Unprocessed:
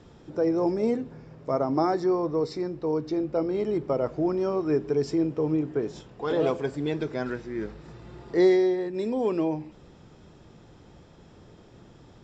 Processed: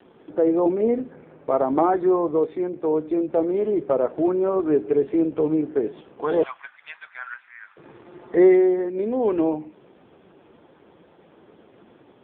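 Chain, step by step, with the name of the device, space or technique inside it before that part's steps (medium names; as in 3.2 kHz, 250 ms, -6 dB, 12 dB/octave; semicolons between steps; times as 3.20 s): 6.43–7.77 s: inverse Chebyshev high-pass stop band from 190 Hz, stop band 80 dB; telephone (band-pass 270–3300 Hz; trim +6.5 dB; AMR-NB 5.15 kbps 8 kHz)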